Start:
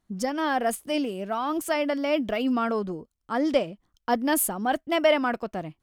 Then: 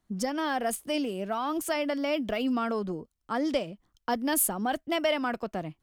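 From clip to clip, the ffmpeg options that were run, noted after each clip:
-filter_complex "[0:a]acrossover=split=150|3000[a][b][c];[b]acompressor=threshold=-29dB:ratio=2[d];[a][d][c]amix=inputs=3:normalize=0"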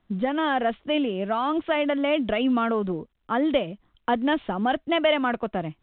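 -af "volume=5.5dB" -ar 8000 -c:a pcm_mulaw

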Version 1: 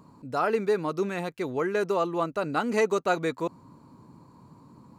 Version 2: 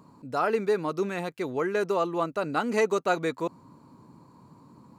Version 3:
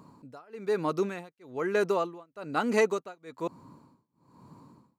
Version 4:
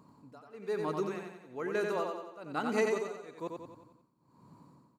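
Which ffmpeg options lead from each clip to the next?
-af "lowshelf=f=63:g=-9.5"
-af "tremolo=f=1.1:d=0.98,volume=1dB"
-af "aecho=1:1:90|180|270|360|450|540:0.631|0.315|0.158|0.0789|0.0394|0.0197,volume=-6.5dB"

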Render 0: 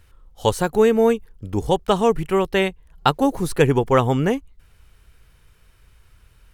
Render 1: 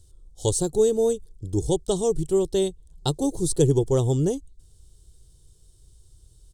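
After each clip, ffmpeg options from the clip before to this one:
-af "firequalizer=gain_entry='entry(150,0);entry(230,-11);entry(330,2);entry(530,-8);entry(1300,-23);entry(2400,-27);entry(3400,-3);entry(8400,10);entry(12000,-7)':delay=0.05:min_phase=1"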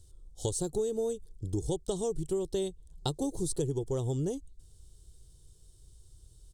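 -af "acompressor=threshold=-26dB:ratio=6,volume=-2.5dB"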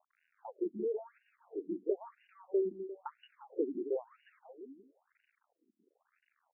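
-filter_complex "[0:a]aeval=exprs='val(0)*gte(abs(val(0)),0.00316)':c=same,asplit=2[a][b];[b]aecho=0:1:175|350|525|700|875:0.473|0.185|0.072|0.0281|0.0109[c];[a][c]amix=inputs=2:normalize=0,afftfilt=real='re*between(b*sr/1024,260*pow(2100/260,0.5+0.5*sin(2*PI*1*pts/sr))/1.41,260*pow(2100/260,0.5+0.5*sin(2*PI*1*pts/sr))*1.41)':imag='im*between(b*sr/1024,260*pow(2100/260,0.5+0.5*sin(2*PI*1*pts/sr))/1.41,260*pow(2100/260,0.5+0.5*sin(2*PI*1*pts/sr))*1.41)':win_size=1024:overlap=0.75"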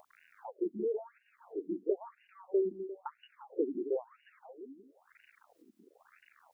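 -af "acompressor=mode=upward:threshold=-51dB:ratio=2.5,volume=1.5dB"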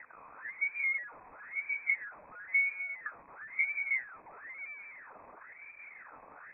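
-af "aeval=exprs='val(0)+0.5*0.00562*sgn(val(0))':c=same,lowpass=f=2.2k:t=q:w=0.5098,lowpass=f=2.2k:t=q:w=0.6013,lowpass=f=2.2k:t=q:w=0.9,lowpass=f=2.2k:t=q:w=2.563,afreqshift=-2600,bandreject=f=370:w=12"

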